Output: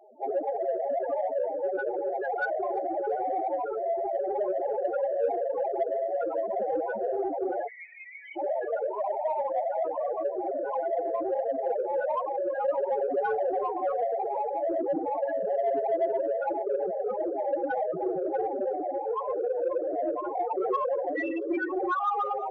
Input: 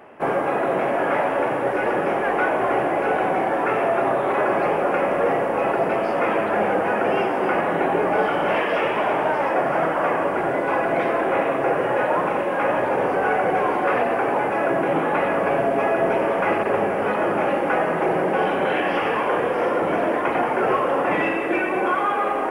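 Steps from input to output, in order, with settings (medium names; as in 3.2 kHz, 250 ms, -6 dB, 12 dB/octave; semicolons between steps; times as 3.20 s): 7.67–8.37 s: elliptic high-pass 2 kHz, stop band 50 dB; 12.66–13.60 s: comb 7.3 ms, depth 40%; loudest bins only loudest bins 4; in parallel at -5.5 dB: saturation -22.5 dBFS, distortion -16 dB; 3.65–4.15 s: on the sum: tape spacing loss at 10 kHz 37 dB; on a send: feedback echo behind a high-pass 336 ms, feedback 70%, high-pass 5 kHz, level -16 dB; on the sum: trim -5.5 dB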